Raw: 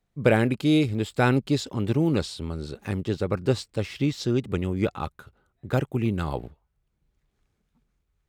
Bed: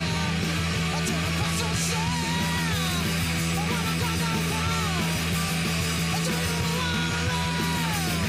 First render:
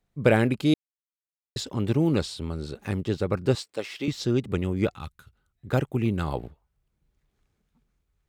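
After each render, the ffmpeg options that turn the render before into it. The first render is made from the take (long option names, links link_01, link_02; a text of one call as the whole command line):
ffmpeg -i in.wav -filter_complex "[0:a]asettb=1/sr,asplit=3[link_01][link_02][link_03];[link_01]atrim=end=3.554[link_04];[link_02]atrim=start=3.55:end=4.08,asetpts=PTS-STARTPTS,afade=type=in:duration=0.004:curve=qsin,afade=type=out:start_time=0.526:duration=0.004:curve=qsin,highpass=360[link_05];[link_03]atrim=start=4.076[link_06];[link_04][link_05]acrossfade=duration=0.004:curve1=hsin:curve2=qsin[link_07];[link_07][link_06]acrossfade=duration=0.004:curve1=qsin:curve2=hsin,asettb=1/sr,asplit=3[link_08][link_09][link_10];[link_08]atrim=end=4.944[link_11];[link_09]atrim=start=4.94:end=5.67,asetpts=PTS-STARTPTS,afade=type=in:duration=0.004:curve=qsin,afade=type=out:start_time=0.726:duration=0.004:curve=qsin,equalizer=frequency=530:width=0.43:gain=-14[link_12];[link_10]atrim=start=5.666[link_13];[link_11][link_12]acrossfade=duration=0.004:curve1=hsin:curve2=qsin[link_14];[link_14][link_13]acrossfade=duration=0.004:curve1=qsin:curve2=hsin,asplit=3[link_15][link_16][link_17];[link_15]atrim=end=0.74,asetpts=PTS-STARTPTS,afade=type=out:start_time=0.736:duration=0.004:curve=hsin[link_18];[link_16]atrim=start=0.74:end=1.56,asetpts=PTS-STARTPTS,volume=0[link_19];[link_17]atrim=start=1.56,asetpts=PTS-STARTPTS,afade=type=in:duration=0.004:curve=hsin[link_20];[link_18][link_19][link_20]concat=n=3:v=0:a=1" out.wav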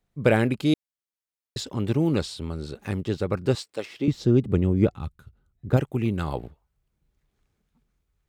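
ffmpeg -i in.wav -filter_complex "[0:a]asettb=1/sr,asplit=3[link_01][link_02][link_03];[link_01]atrim=end=3.854[link_04];[link_02]atrim=start=3.85:end=5.77,asetpts=PTS-STARTPTS,afade=type=in:duration=0.004:curve=qsin,afade=type=out:start_time=1.916:duration=0.004:curve=qsin,tiltshelf=frequency=780:gain=6.5[link_05];[link_03]atrim=start=5.766[link_06];[link_04][link_05]acrossfade=duration=0.004:curve1=hsin:curve2=qsin[link_07];[link_07][link_06]acrossfade=duration=0.004:curve1=qsin:curve2=hsin" out.wav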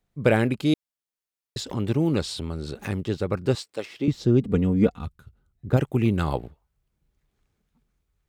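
ffmpeg -i in.wav -filter_complex "[0:a]asettb=1/sr,asplit=3[link_01][link_02][link_03];[link_01]atrim=end=1.694[link_04];[link_02]atrim=start=1.69:end=3.06,asetpts=PTS-STARTPTS,afade=type=in:duration=0.004:curve=qsin,afade=type=out:start_time=1.366:duration=0.004:curve=qsin,acompressor=mode=upward:threshold=-25dB:ratio=2.5:attack=3.2:release=140:knee=2.83:detection=peak[link_05];[link_03]atrim=start=3.056[link_06];[link_04][link_05]acrossfade=duration=0.004:curve1=hsin:curve2=qsin[link_07];[link_07][link_06]acrossfade=duration=0.004:curve1=qsin:curve2=hsin,asettb=1/sr,asplit=3[link_08][link_09][link_10];[link_08]atrim=end=4.414[link_11];[link_09]atrim=start=4.41:end=5.06,asetpts=PTS-STARTPTS,afade=type=in:duration=0.004:curve=qsin,afade=type=out:start_time=0.646:duration=0.004:curve=qsin,aecho=1:1:4.2:0.65,atrim=end_sample=28665[link_12];[link_10]atrim=start=5.056[link_13];[link_11][link_12]acrossfade=duration=0.004:curve1=hsin:curve2=qsin[link_14];[link_14][link_13]acrossfade=duration=0.004:curve1=qsin:curve2=hsin,asplit=3[link_15][link_16][link_17];[link_15]atrim=end=5.812[link_18];[link_16]atrim=start=5.808:end=6.372,asetpts=PTS-STARTPTS,volume=3.5dB[link_19];[link_17]atrim=start=6.368[link_20];[link_18][link_19]acrossfade=duration=0.004:curve1=hsin:curve2=hsin[link_21];[link_21][link_20]acrossfade=duration=0.004:curve1=hsin:curve2=hsin" out.wav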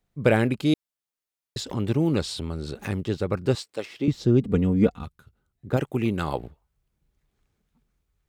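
ffmpeg -i in.wav -filter_complex "[0:a]asettb=1/sr,asplit=3[link_01][link_02][link_03];[link_01]atrim=end=5.034[link_04];[link_02]atrim=start=5.03:end=6.39,asetpts=PTS-STARTPTS,afade=type=in:duration=0.004:curve=qsin,afade=type=out:start_time=1.356:duration=0.004:curve=qsin,lowshelf=frequency=140:gain=-9.5[link_05];[link_03]atrim=start=6.386[link_06];[link_04][link_05]acrossfade=duration=0.004:curve1=hsin:curve2=qsin[link_07];[link_07][link_06]acrossfade=duration=0.004:curve1=qsin:curve2=hsin" out.wav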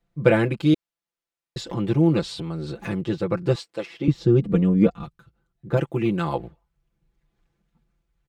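ffmpeg -i in.wav -af "lowpass=frequency=3400:poles=1,aecho=1:1:5.9:0.87" out.wav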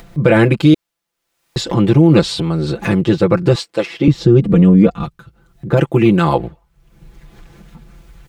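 ffmpeg -i in.wav -af "acompressor=mode=upward:threshold=-37dB:ratio=2.5,alimiter=level_in=12.5dB:limit=-1dB:release=50:level=0:latency=1" out.wav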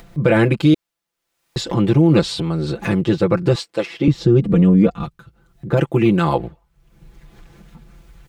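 ffmpeg -i in.wav -af "volume=-3.5dB" out.wav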